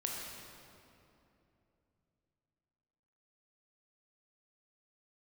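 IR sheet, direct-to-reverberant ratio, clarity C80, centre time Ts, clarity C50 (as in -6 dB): -2.0 dB, 1.0 dB, 0.119 s, 0.0 dB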